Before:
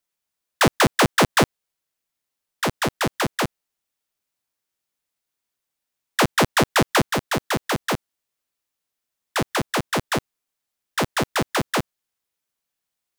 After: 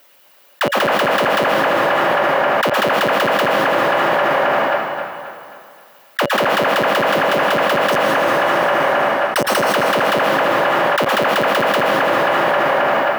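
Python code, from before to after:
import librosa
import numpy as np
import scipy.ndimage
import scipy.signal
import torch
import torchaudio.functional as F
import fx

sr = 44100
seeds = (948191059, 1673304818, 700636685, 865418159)

p1 = scipy.signal.sosfilt(scipy.signal.butter(2, 160.0, 'highpass', fs=sr, output='sos'), x)
p2 = fx.low_shelf(p1, sr, hz=290.0, db=-10.0)
p3 = fx.hpss(p2, sr, part='percussive', gain_db=7)
p4 = fx.peak_eq(p3, sr, hz=7800.0, db=-12.5, octaves=1.7)
p5 = fx.sample_hold(p4, sr, seeds[0], rate_hz=7100.0, jitter_pct=0, at=(7.92, 9.61))
p6 = fx.small_body(p5, sr, hz=(570.0, 2900.0), ring_ms=45, db=10)
p7 = p6 + fx.echo_wet_bandpass(p6, sr, ms=266, feedback_pct=43, hz=1200.0, wet_db=-5.5, dry=0)
p8 = fx.rev_plate(p7, sr, seeds[1], rt60_s=2.3, hf_ratio=0.8, predelay_ms=105, drr_db=7.5)
p9 = fx.env_flatten(p8, sr, amount_pct=100)
y = p9 * librosa.db_to_amplitude(-8.5)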